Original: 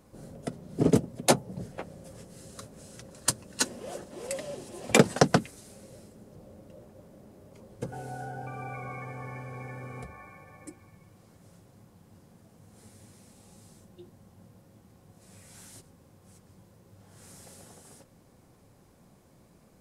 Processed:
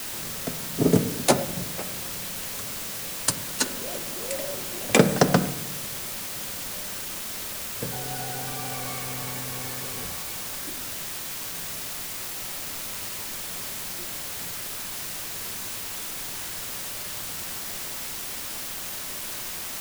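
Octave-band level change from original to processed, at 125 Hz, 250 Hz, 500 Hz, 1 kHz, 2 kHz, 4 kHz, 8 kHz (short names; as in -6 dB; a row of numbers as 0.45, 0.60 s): +3.0, +3.5, +3.0, +3.0, +5.0, +8.0, +7.5 dB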